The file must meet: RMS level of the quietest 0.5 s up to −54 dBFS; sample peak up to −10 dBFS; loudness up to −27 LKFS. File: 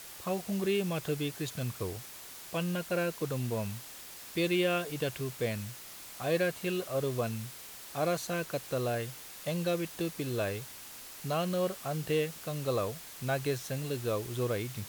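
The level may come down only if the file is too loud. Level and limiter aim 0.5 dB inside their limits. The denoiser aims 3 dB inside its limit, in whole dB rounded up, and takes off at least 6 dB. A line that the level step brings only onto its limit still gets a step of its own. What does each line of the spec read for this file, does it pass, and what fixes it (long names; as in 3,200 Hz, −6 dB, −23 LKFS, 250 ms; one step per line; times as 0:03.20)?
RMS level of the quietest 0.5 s −47 dBFS: out of spec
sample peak −17.5 dBFS: in spec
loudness −34.0 LKFS: in spec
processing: broadband denoise 10 dB, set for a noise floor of −47 dBFS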